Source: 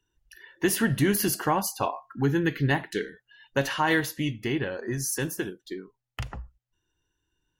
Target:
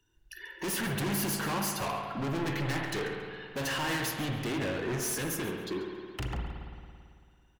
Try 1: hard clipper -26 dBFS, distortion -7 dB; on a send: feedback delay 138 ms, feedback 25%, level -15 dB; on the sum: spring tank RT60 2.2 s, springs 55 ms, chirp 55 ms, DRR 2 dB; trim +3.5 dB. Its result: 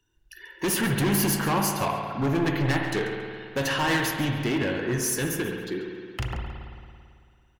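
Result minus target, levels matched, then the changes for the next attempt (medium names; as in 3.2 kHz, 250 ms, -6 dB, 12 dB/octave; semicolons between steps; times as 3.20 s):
hard clipper: distortion -5 dB
change: hard clipper -35.5 dBFS, distortion -2 dB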